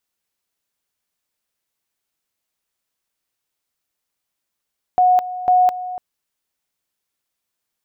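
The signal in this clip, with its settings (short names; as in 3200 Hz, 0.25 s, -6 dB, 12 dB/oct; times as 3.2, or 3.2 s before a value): two-level tone 730 Hz -10 dBFS, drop 14.5 dB, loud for 0.21 s, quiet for 0.29 s, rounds 2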